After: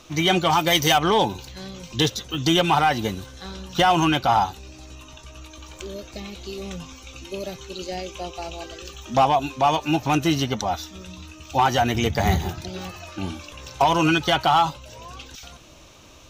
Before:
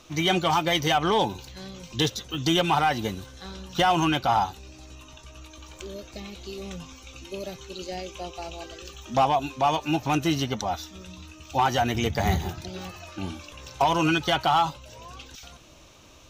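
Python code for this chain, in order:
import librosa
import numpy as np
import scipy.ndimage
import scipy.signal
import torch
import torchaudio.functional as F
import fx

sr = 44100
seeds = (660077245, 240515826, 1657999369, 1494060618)

y = fx.high_shelf(x, sr, hz=fx.line((0.58, 7300.0), (0.98, 4900.0)), db=11.5, at=(0.58, 0.98), fade=0.02)
y = y * librosa.db_to_amplitude(3.5)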